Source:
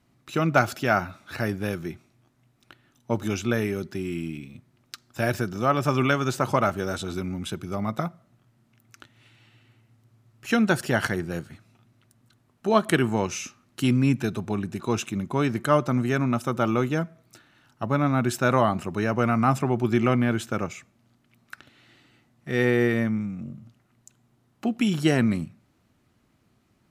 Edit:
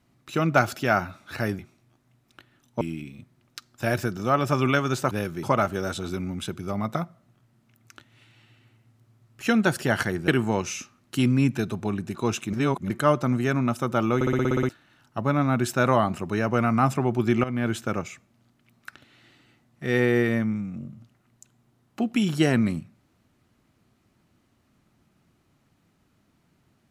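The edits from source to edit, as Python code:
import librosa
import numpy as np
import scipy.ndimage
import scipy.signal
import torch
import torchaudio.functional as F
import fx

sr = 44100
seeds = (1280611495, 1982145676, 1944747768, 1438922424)

y = fx.edit(x, sr, fx.move(start_s=1.59, length_s=0.32, to_s=6.47),
    fx.cut(start_s=3.13, length_s=1.04),
    fx.cut(start_s=11.32, length_s=1.61),
    fx.reverse_span(start_s=15.18, length_s=0.37),
    fx.stutter_over(start_s=16.8, slice_s=0.06, count=9),
    fx.fade_in_from(start_s=20.09, length_s=0.27, floor_db=-14.0), tone=tone)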